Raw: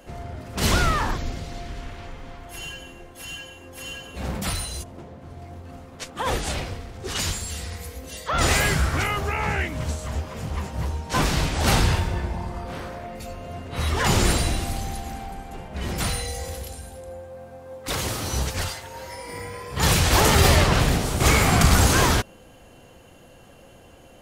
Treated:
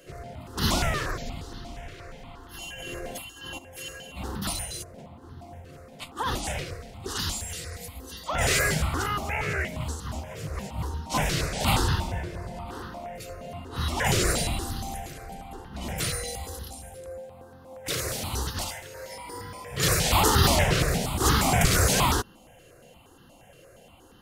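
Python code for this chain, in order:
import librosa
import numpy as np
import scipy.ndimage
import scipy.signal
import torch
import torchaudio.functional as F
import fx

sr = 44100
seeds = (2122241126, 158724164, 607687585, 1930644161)

y = fx.low_shelf(x, sr, hz=61.0, db=-8.0)
y = fx.over_compress(y, sr, threshold_db=-45.0, ratio=-1.0, at=(2.74, 3.57), fade=0.02)
y = fx.phaser_held(y, sr, hz=8.5, low_hz=230.0, high_hz=2300.0)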